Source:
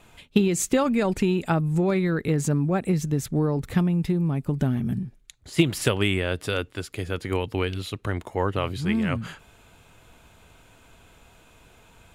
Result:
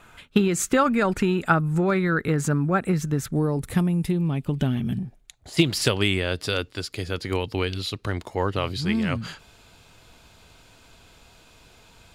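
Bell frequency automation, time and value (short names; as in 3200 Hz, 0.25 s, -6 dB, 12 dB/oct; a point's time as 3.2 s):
bell +11 dB 0.69 oct
1400 Hz
from 3.32 s 10000 Hz
from 4.11 s 3100 Hz
from 4.99 s 710 Hz
from 5.57 s 4700 Hz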